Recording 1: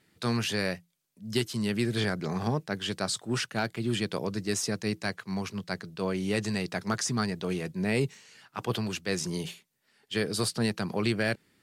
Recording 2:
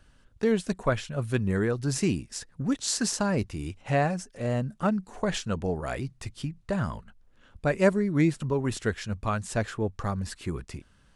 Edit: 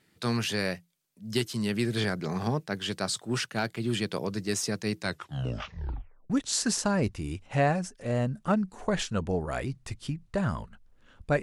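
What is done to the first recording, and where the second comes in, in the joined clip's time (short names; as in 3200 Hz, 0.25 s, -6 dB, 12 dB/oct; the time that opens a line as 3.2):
recording 1
4.99 tape stop 1.31 s
6.3 switch to recording 2 from 2.65 s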